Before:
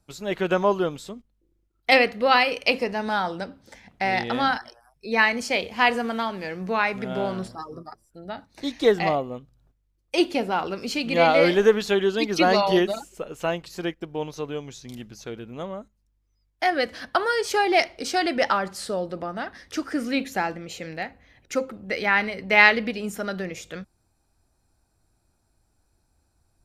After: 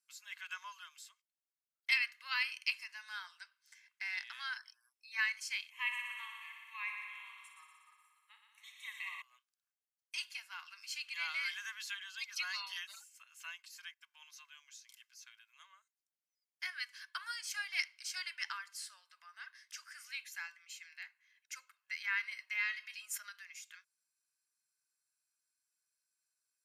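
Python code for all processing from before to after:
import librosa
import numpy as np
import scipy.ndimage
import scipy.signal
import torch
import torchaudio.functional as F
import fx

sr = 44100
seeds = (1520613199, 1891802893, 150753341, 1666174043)

y = fx.chain(x, sr, fx.fixed_phaser(hz=1000.0, stages=8),
    fx.echo_heads(ms=60, heads='first and second', feedback_pct=73, wet_db=-9.0), at=(5.7, 9.22))
y = fx.chain(y, sr, fx.low_shelf(hz=210.0, db=11.0),
    fx.comb_fb(f0_hz=640.0, decay_s=0.15, harmonics='all', damping=0.0, mix_pct=70),
    fx.env_flatten(amount_pct=70), at=(22.31, 23.29))
y = scipy.signal.sosfilt(scipy.signal.bessel(8, 2200.0, 'highpass', norm='mag', fs=sr, output='sos'), y)
y = fx.peak_eq(y, sr, hz=3700.0, db=-6.5, octaves=0.4)
y = y + 0.42 * np.pad(y, (int(1.9 * sr / 1000.0), 0))[:len(y)]
y = y * librosa.db_to_amplitude(-9.0)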